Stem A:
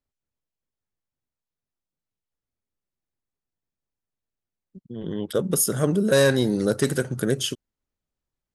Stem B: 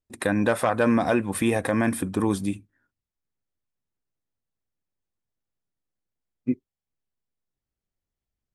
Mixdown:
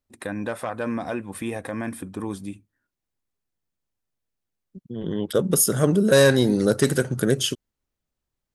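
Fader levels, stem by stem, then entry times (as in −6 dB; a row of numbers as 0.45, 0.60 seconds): +2.5, −7.0 decibels; 0.00, 0.00 seconds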